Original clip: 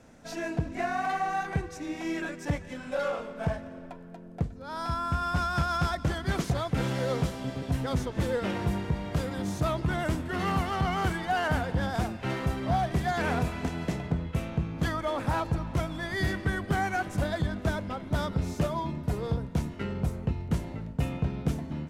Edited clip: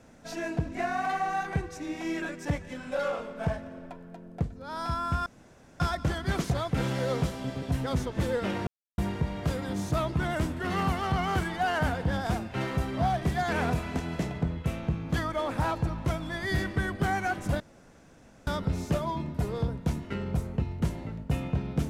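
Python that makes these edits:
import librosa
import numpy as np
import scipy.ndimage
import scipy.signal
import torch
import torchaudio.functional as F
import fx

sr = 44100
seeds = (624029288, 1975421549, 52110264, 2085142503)

y = fx.edit(x, sr, fx.room_tone_fill(start_s=5.26, length_s=0.54),
    fx.insert_silence(at_s=8.67, length_s=0.31),
    fx.room_tone_fill(start_s=17.29, length_s=0.87), tone=tone)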